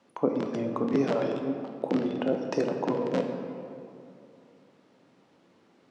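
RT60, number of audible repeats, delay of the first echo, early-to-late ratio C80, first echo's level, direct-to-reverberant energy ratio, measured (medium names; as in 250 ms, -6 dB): 2.6 s, no echo, no echo, 6.5 dB, no echo, 4.0 dB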